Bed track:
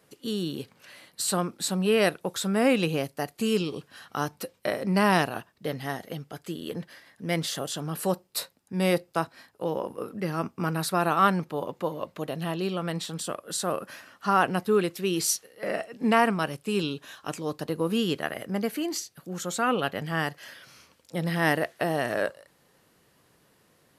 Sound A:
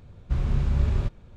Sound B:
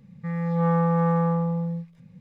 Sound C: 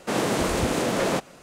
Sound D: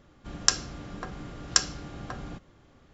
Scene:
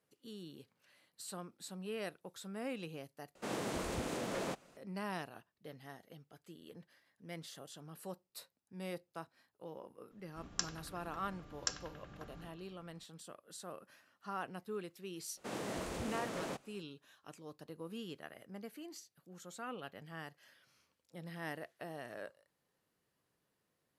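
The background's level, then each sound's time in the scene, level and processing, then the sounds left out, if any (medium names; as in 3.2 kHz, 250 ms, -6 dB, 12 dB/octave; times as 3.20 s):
bed track -19.5 dB
3.35 s: replace with C -15 dB
10.11 s: add D -15 dB + bucket-brigade echo 93 ms, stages 2048, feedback 76%, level -11 dB
15.37 s: add C -17.5 dB
not used: A, B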